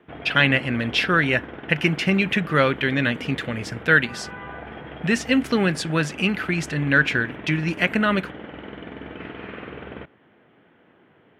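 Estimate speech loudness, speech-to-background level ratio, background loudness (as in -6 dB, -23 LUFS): -21.5 LUFS, 16.0 dB, -37.5 LUFS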